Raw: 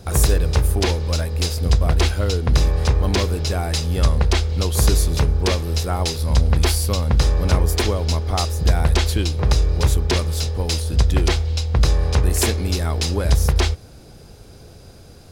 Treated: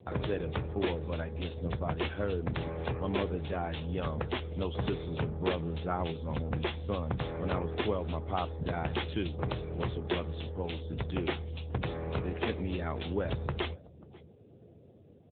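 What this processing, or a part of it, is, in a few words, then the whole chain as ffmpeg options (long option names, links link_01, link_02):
mobile call with aggressive noise cancelling: -filter_complex "[0:a]asettb=1/sr,asplit=3[link_01][link_02][link_03];[link_01]atrim=end=5.324[link_04];[link_02]atrim=start=5.32:end=6.12,asetpts=PTS-STARTPTS,afade=type=in:duration=0.004:curve=qsin,afade=type=out:start_time=0.796:duration=0.004:curve=qsin,adynamicequalizer=threshold=0.00501:dfrequency=160:dqfactor=4.5:tfrequency=160:tqfactor=4.5:attack=5:release=100:ratio=0.375:range=3:mode=boostabove:tftype=bell[link_05];[link_03]atrim=start=6.116[link_06];[link_04][link_05]acrossfade=duration=0.004:curve1=hsin:curve2=qsin[link_07];[link_07][link_06]acrossfade=duration=0.004:curve1=qsin:curve2=hsin,highpass=frequency=140:poles=1,aecho=1:1:540:0.0794,afftdn=noise_reduction=18:noise_floor=-44,volume=-7dB" -ar 8000 -c:a libopencore_amrnb -b:a 7950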